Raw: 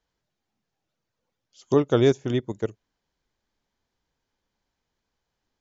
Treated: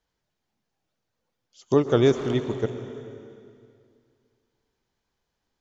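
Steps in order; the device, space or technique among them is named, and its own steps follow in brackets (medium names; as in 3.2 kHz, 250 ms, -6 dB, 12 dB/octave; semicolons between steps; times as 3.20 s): saturated reverb return (on a send at -6 dB: reverberation RT60 2.2 s, pre-delay 116 ms + saturation -21.5 dBFS, distortion -9 dB)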